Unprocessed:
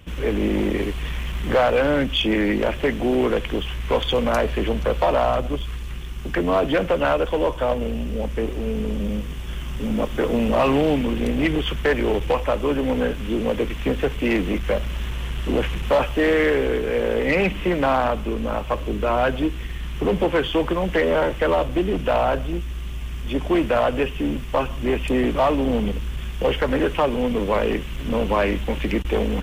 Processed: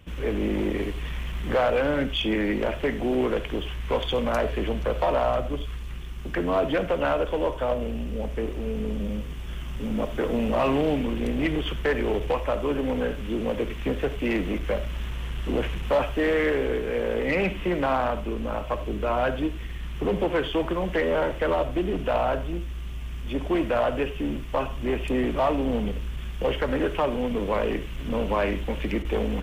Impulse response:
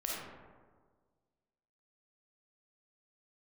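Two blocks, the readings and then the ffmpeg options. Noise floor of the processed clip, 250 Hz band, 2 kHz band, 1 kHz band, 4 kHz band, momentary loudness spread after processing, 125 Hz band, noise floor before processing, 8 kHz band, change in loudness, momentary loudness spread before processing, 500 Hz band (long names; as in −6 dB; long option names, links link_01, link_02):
−34 dBFS, −4.5 dB, −5.0 dB, −4.5 dB, −5.5 dB, 8 LU, −4.0 dB, −30 dBFS, can't be measured, −4.5 dB, 8 LU, −4.5 dB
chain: -filter_complex "[0:a]asplit=2[link_01][link_02];[1:a]atrim=start_sample=2205,atrim=end_sample=4410,lowpass=4000[link_03];[link_02][link_03]afir=irnorm=-1:irlink=0,volume=-10dB[link_04];[link_01][link_04]amix=inputs=2:normalize=0,volume=-6.5dB"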